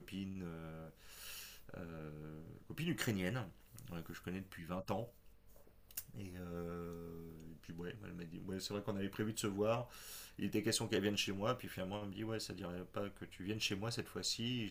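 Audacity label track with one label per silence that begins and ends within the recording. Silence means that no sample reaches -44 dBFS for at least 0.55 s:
5.050000	5.910000	silence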